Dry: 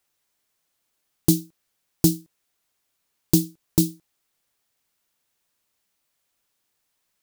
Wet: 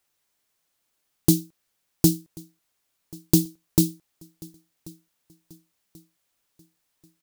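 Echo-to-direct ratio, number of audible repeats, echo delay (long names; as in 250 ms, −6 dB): −23.0 dB, 2, 1,086 ms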